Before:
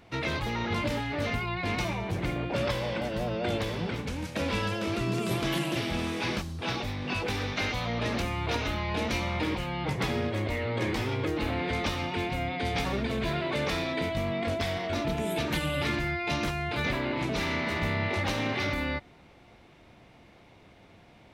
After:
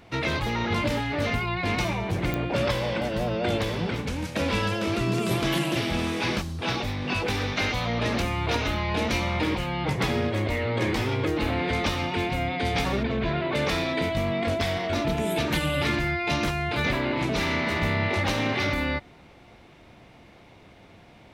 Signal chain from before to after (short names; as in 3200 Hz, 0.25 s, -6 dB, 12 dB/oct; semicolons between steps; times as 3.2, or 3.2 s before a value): 13.03–13.55 air absorption 190 m; pops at 2.34, -18 dBFS; gain +4 dB